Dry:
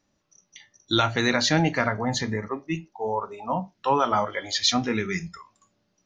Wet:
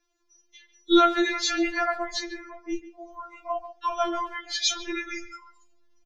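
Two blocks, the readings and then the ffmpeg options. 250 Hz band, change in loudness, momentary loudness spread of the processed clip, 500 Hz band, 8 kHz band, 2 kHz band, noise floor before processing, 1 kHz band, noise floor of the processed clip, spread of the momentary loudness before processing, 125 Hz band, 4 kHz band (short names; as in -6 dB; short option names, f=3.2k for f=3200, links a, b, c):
-0.5 dB, -1.0 dB, 20 LU, -1.5 dB, -1.0 dB, -2.5 dB, -73 dBFS, -1.5 dB, -69 dBFS, 10 LU, under -30 dB, -2.5 dB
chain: -filter_complex "[0:a]asplit=2[a][b];[b]adelay=140,highpass=300,lowpass=3.4k,asoftclip=type=hard:threshold=-15dB,volume=-13dB[c];[a][c]amix=inputs=2:normalize=0,asubboost=boost=6.5:cutoff=56,afftfilt=real='re*4*eq(mod(b,16),0)':imag='im*4*eq(mod(b,16),0)':win_size=2048:overlap=0.75"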